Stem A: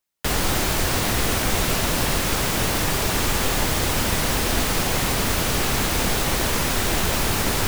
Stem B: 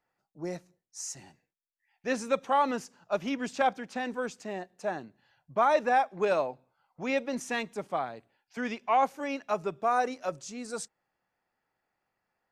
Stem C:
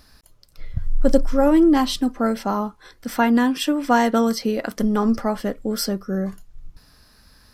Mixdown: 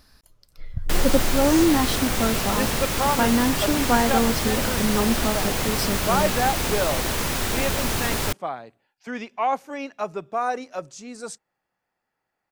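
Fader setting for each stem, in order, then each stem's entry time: -3.0, +1.5, -3.5 dB; 0.65, 0.50, 0.00 s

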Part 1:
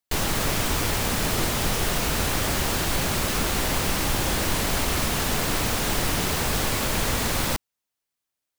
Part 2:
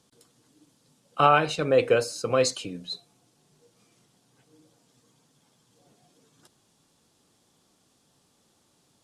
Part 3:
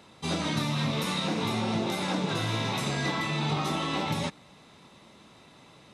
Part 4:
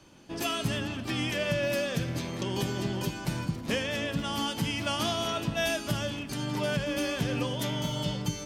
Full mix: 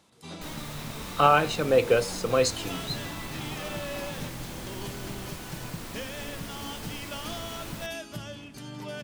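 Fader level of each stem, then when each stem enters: -16.5, -0.5, -11.5, -8.0 dB; 0.30, 0.00, 0.00, 2.25 s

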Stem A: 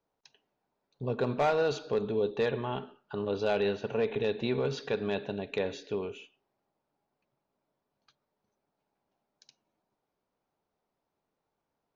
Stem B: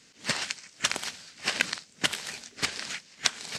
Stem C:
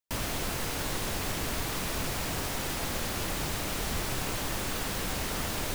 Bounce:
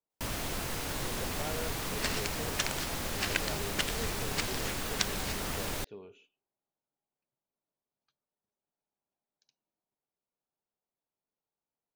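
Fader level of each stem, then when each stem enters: -14.0, -6.0, -3.0 dB; 0.00, 1.75, 0.10 s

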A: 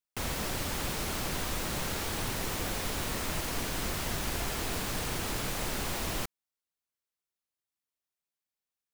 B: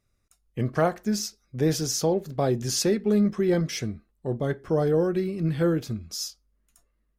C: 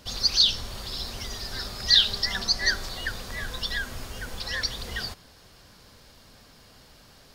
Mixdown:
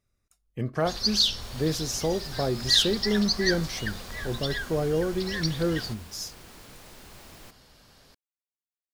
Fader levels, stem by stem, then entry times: -15.0, -3.5, -3.0 dB; 1.25, 0.00, 0.80 s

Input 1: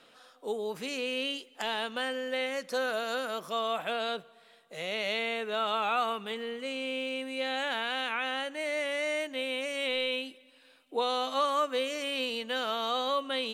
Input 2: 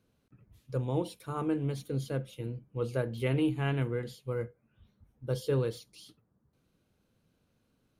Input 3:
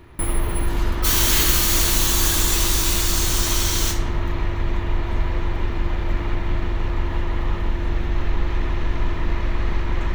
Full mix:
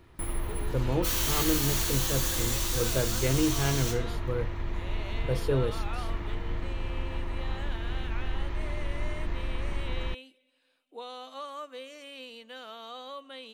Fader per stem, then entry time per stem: -12.0, +2.0, -10.5 dB; 0.00, 0.00, 0.00 s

